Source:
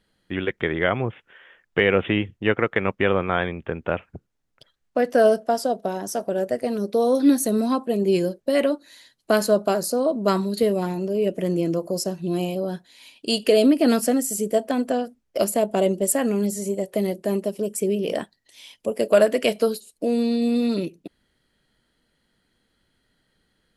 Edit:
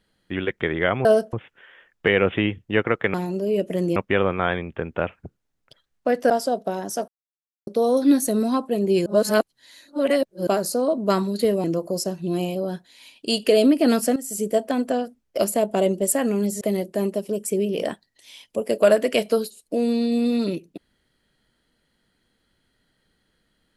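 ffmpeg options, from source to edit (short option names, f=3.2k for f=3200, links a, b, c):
-filter_complex "[0:a]asplit=13[a][b][c][d][e][f][g][h][i][j][k][l][m];[a]atrim=end=1.052[n];[b]atrim=start=5.198:end=5.482[o];[c]atrim=start=1.048:end=2.862[p];[d]atrim=start=10.818:end=11.642[q];[e]atrim=start=2.858:end=5.202[r];[f]atrim=start=5.478:end=6.26,asetpts=PTS-STARTPTS,afade=t=out:st=0.778:d=0.004:c=hsin[s];[g]atrim=start=6.26:end=6.85,asetpts=PTS-STARTPTS,volume=0[t];[h]atrim=start=6.85:end=8.242,asetpts=PTS-STARTPTS,afade=t=in:d=0.004:c=hsin[u];[i]atrim=start=8.238:end=9.652,asetpts=PTS-STARTPTS,areverse[v];[j]atrim=start=9.648:end=10.822[w];[k]atrim=start=11.638:end=14.16,asetpts=PTS-STARTPTS,afade=t=out:st=2.518:d=0.004:c=hsin:silence=0.188365[x];[l]atrim=start=14.16:end=16.612,asetpts=PTS-STARTPTS,afade=t=in:d=0.27:silence=0.188365[y];[m]atrim=start=16.908[z];[n][o]acrossfade=d=0.004:c1=hsin:c2=hsin[aa];[aa][p]acrossfade=d=0.004:c1=hsin:c2=hsin[ab];[ab][q]acrossfade=d=0.004:c1=hsin:c2=hsin[ac];[ac][r]acrossfade=d=0.004:c1=hsin:c2=hsin[ad];[s][t][u]concat=n=3:v=0:a=1[ae];[ad][ae]acrossfade=d=0.004:c1=hsin:c2=hsin[af];[af][v]acrossfade=d=0.004:c1=hsin:c2=hsin[ag];[ag][w]acrossfade=d=0.004:c1=hsin:c2=hsin[ah];[x][y]concat=n=2:v=0:a=1[ai];[ah][ai]acrossfade=d=0.004:c1=hsin:c2=hsin[aj];[aj][z]acrossfade=d=0.004:c1=hsin:c2=hsin"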